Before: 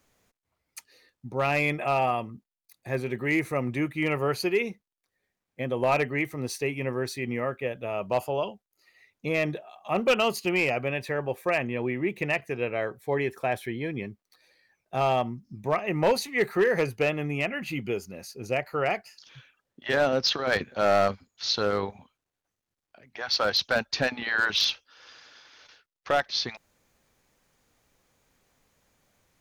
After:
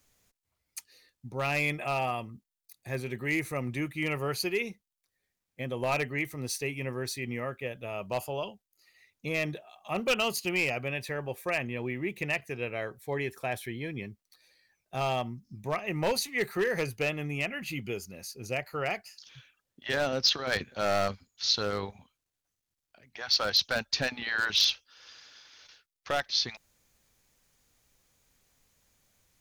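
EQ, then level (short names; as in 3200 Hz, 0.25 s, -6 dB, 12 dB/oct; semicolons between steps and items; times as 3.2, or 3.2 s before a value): low shelf 140 Hz +9 dB; high shelf 2500 Hz +11 dB; -7.5 dB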